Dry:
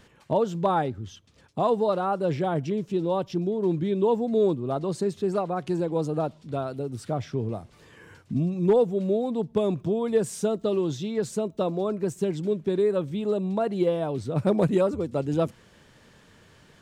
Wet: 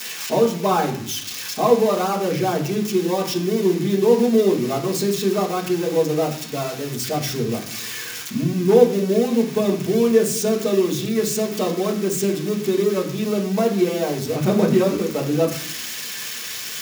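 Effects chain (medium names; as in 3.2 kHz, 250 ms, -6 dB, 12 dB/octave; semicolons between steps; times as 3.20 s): zero-crossing glitches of -21 dBFS; reverberation RT60 0.65 s, pre-delay 3 ms, DRR -2 dB; trim -1.5 dB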